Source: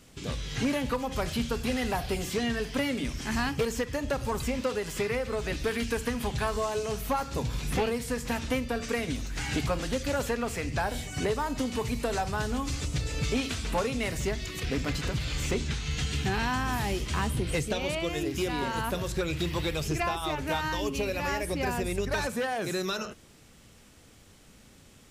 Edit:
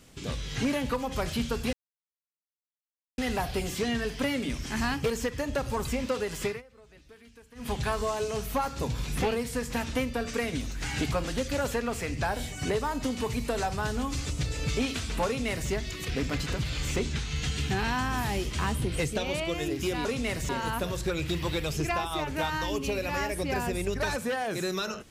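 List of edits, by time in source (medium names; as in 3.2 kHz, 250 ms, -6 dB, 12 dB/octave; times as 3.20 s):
1.73 s: insert silence 1.45 s
5.01–6.26 s: dip -23.5 dB, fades 0.16 s
13.81–14.25 s: copy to 18.60 s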